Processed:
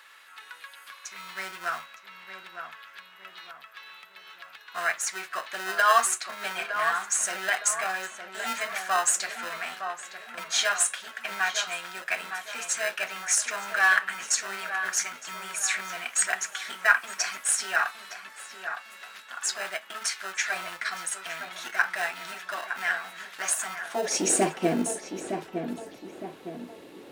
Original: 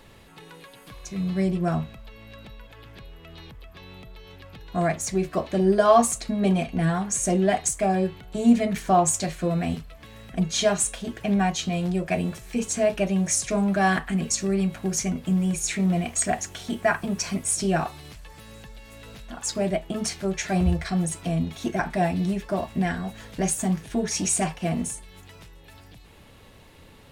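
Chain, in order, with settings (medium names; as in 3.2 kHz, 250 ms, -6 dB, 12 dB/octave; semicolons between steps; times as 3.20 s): in parallel at -11 dB: sample-and-hold 39×; on the sum: high-pass sweep 1.4 kHz -> 330 Hz, 23.70–24.30 s; filtered feedback delay 912 ms, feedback 48%, low-pass 1.8 kHz, level -7 dB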